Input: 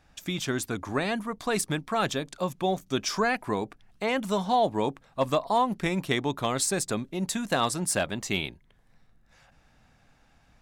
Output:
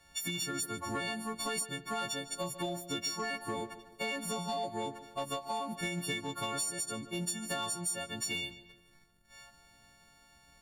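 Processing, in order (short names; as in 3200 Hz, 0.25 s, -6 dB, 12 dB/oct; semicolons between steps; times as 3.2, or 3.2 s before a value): frequency quantiser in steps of 4 st; compressor 10:1, threshold -31 dBFS, peak gain reduction 20 dB; sample leveller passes 1; darkening echo 0.149 s, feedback 47%, low-pass 4200 Hz, level -13.5 dB; gain -5 dB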